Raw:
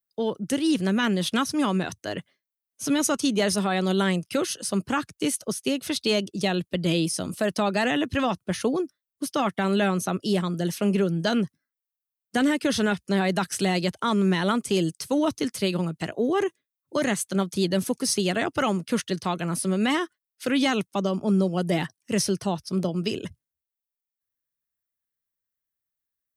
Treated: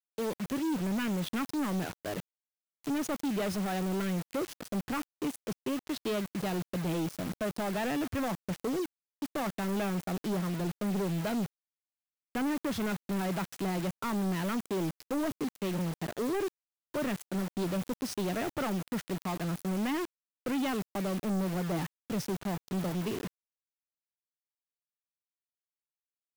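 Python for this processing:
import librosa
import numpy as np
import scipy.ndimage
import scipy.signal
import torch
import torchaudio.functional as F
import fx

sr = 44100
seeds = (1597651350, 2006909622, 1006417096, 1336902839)

y = fx.wiener(x, sr, points=9)
y = fx.lowpass(y, sr, hz=1500.0, slope=6)
y = fx.mod_noise(y, sr, seeds[0], snr_db=29)
y = fx.quant_dither(y, sr, seeds[1], bits=6, dither='none')
y = 10.0 ** (-26.0 / 20.0) * np.tanh(y / 10.0 ** (-26.0 / 20.0))
y = F.gain(torch.from_numpy(y), -2.0).numpy()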